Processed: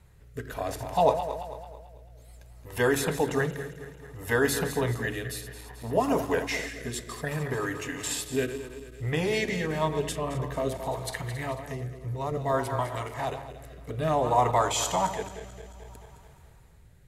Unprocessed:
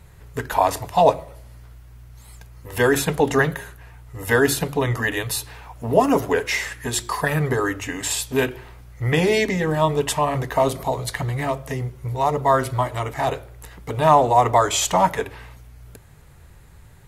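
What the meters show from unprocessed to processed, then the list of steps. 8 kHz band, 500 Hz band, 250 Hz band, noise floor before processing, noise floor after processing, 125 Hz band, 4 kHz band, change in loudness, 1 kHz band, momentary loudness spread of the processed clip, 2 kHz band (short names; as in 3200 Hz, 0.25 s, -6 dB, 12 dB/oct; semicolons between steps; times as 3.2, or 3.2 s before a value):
-7.5 dB, -7.5 dB, -7.0 dB, -46 dBFS, -53 dBFS, -7.5 dB, -7.5 dB, -8.0 dB, -9.0 dB, 17 LU, -8.0 dB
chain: regenerating reverse delay 0.11 s, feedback 72%, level -10 dB; rotary speaker horn 0.6 Hz; gain -6.5 dB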